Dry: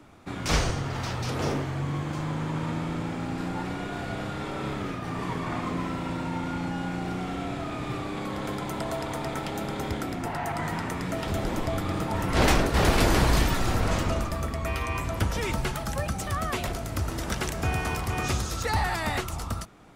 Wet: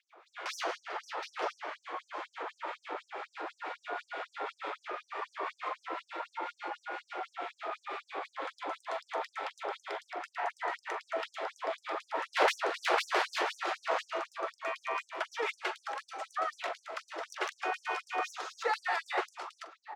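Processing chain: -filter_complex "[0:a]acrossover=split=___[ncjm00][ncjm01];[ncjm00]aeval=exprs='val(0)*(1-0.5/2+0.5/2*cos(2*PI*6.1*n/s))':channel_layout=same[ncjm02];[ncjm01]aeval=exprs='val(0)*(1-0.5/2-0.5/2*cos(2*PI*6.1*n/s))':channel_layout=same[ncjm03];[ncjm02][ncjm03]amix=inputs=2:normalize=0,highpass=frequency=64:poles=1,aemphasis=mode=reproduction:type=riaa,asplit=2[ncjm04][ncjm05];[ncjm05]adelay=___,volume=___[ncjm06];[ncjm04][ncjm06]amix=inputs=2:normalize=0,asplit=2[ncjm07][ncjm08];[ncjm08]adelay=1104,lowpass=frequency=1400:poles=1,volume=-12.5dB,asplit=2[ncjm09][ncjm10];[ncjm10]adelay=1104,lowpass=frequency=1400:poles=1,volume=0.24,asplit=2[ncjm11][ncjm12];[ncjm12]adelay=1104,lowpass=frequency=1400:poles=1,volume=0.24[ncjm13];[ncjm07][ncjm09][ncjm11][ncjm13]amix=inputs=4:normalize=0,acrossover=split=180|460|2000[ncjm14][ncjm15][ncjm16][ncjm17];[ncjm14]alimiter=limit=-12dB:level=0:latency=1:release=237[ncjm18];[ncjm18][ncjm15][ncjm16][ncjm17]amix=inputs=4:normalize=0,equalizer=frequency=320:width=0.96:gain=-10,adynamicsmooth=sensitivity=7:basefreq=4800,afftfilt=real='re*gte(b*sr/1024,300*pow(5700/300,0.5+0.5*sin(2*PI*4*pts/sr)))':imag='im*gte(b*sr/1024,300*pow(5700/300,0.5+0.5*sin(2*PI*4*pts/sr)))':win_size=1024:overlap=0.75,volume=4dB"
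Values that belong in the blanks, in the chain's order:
1500, 43, -12dB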